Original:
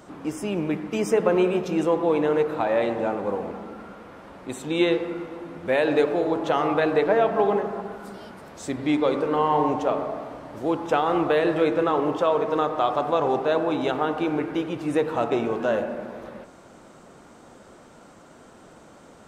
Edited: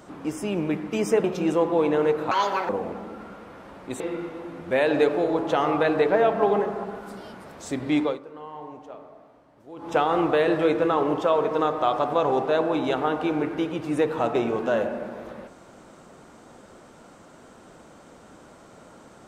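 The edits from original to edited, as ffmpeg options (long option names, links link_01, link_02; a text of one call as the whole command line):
ffmpeg -i in.wav -filter_complex "[0:a]asplit=7[link_01][link_02][link_03][link_04][link_05][link_06][link_07];[link_01]atrim=end=1.242[link_08];[link_02]atrim=start=1.548:end=2.624[link_09];[link_03]atrim=start=2.62:end=3.28,asetpts=PTS-STARTPTS,asetrate=76293,aresample=44100,atrim=end_sample=16824,asetpts=PTS-STARTPTS[link_10];[link_04]atrim=start=3.276:end=4.592[link_11];[link_05]atrim=start=4.968:end=9.16,asetpts=PTS-STARTPTS,afade=type=out:start_time=4.012:duration=0.18:silence=0.125893[link_12];[link_06]atrim=start=9.16:end=10.73,asetpts=PTS-STARTPTS,volume=-18dB[link_13];[link_07]atrim=start=10.73,asetpts=PTS-STARTPTS,afade=type=in:duration=0.18:silence=0.125893[link_14];[link_08][link_09]acrossfade=duration=0.004:curve1=hsin:curve2=hsin[link_15];[link_15][link_10]acrossfade=duration=0.004:curve1=hsin:curve2=hsin[link_16];[link_16][link_11]acrossfade=duration=0.004:curve1=hsin:curve2=hsin[link_17];[link_12][link_13][link_14]concat=n=3:v=0:a=1[link_18];[link_17][link_18]acrossfade=duration=0.004:curve1=hsin:curve2=hsin" out.wav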